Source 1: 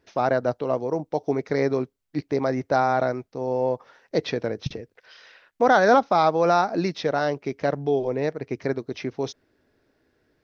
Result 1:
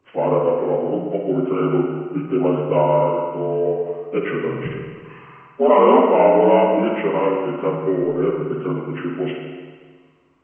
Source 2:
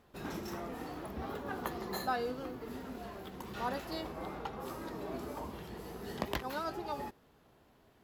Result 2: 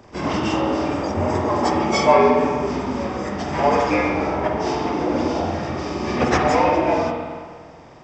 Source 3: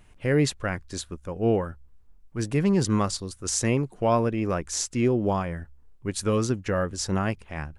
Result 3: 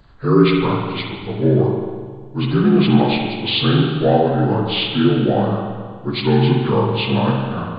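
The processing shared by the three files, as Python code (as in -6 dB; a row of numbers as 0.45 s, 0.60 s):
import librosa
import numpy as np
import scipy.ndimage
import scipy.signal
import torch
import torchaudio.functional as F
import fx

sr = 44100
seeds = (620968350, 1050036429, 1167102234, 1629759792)

y = fx.partial_stretch(x, sr, pct=78)
y = fx.rev_spring(y, sr, rt60_s=1.7, pass_ms=(45, 53), chirp_ms=30, drr_db=1.0)
y = librosa.util.normalize(y) * 10.0 ** (-1.5 / 20.0)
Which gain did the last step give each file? +4.0 dB, +20.0 dB, +7.5 dB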